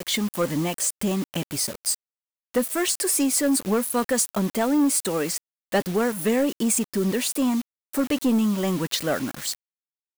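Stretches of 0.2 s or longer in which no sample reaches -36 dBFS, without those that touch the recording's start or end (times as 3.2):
1.95–2.54
5.38–5.72
7.62–7.93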